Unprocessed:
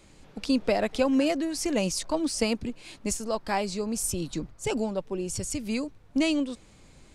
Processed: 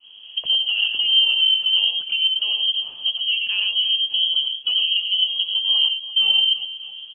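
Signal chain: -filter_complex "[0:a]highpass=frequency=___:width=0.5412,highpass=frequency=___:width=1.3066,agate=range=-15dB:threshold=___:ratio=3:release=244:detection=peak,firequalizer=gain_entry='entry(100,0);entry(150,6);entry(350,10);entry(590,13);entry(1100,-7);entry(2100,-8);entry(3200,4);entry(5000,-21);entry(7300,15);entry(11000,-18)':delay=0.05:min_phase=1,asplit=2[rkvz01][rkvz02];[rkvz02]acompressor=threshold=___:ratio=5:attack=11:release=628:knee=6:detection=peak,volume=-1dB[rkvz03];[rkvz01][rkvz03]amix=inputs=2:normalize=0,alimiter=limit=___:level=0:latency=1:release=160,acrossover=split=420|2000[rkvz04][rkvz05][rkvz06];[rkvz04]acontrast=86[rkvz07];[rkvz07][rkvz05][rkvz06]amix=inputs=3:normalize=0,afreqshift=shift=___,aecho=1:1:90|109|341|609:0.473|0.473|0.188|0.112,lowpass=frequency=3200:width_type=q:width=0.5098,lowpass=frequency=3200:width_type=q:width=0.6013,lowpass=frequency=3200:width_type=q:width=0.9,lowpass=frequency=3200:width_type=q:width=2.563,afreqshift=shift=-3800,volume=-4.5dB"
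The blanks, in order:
59, 59, -53dB, -29dB, -13dB, 400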